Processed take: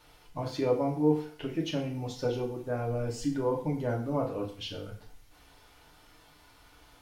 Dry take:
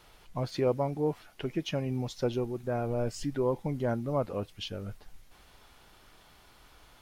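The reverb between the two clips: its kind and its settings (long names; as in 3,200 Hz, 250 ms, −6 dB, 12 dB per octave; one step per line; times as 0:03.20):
feedback delay network reverb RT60 0.49 s, low-frequency decay 0.9×, high-frequency decay 0.95×, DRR −2 dB
level −4 dB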